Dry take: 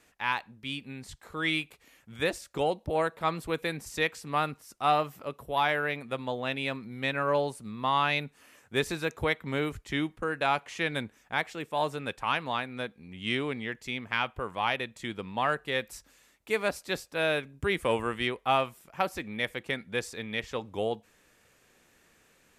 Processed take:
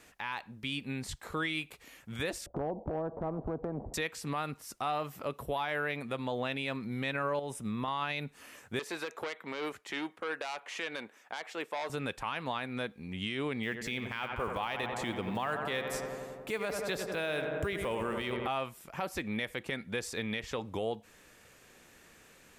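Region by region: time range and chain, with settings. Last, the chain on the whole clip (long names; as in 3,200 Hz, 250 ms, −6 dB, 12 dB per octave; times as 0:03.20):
0:02.46–0:03.94: Chebyshev low-pass filter 700 Hz, order 4 + downward compressor 2 to 1, threshold −39 dBFS + every bin compressed towards the loudest bin 2 to 1
0:07.39–0:07.88: downward compressor 10 to 1, threshold −32 dBFS + Butterworth band-reject 4,400 Hz, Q 5
0:08.79–0:11.90: high-pass filter 440 Hz + high-shelf EQ 3,600 Hz −7.5 dB + saturating transformer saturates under 3,000 Hz
0:13.63–0:18.48: one scale factor per block 7 bits + feedback echo with a low-pass in the loop 90 ms, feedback 80%, low-pass 2,200 Hz, level −10 dB
whole clip: downward compressor 2 to 1, threshold −36 dBFS; brickwall limiter −29 dBFS; level +5 dB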